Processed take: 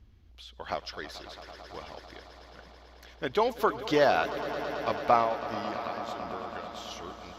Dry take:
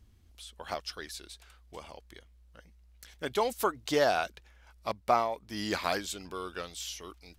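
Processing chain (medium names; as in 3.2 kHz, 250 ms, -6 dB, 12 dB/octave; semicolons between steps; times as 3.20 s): 5.34–6.91 s: compression, threshold -41 dBFS, peak gain reduction 15.5 dB; boxcar filter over 5 samples; on a send: echo with a slow build-up 110 ms, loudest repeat 5, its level -16 dB; on the sum: trim +3 dB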